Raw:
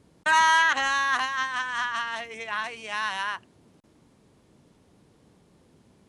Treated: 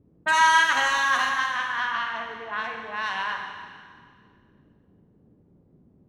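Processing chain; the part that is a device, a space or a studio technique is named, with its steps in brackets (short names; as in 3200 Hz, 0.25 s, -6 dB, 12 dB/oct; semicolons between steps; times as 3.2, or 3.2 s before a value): cassette deck with a dynamic noise filter (white noise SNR 29 dB; low-pass opened by the level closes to 350 Hz, open at -21 dBFS); 1.58–2.07 LPF 5300 Hz 24 dB/oct; Schroeder reverb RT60 1.9 s, combs from 31 ms, DRR 2.5 dB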